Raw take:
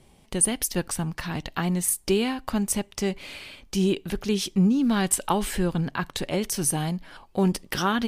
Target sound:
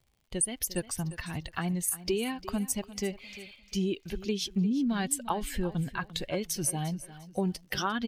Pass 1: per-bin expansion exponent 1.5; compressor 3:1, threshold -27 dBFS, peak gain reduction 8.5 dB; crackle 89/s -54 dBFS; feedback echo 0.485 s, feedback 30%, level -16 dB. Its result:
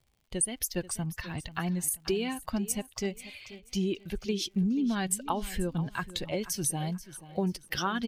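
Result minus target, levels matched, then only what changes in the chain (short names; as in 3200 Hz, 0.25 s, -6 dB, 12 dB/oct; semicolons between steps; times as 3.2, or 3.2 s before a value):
echo 0.135 s late
change: feedback echo 0.35 s, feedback 30%, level -16 dB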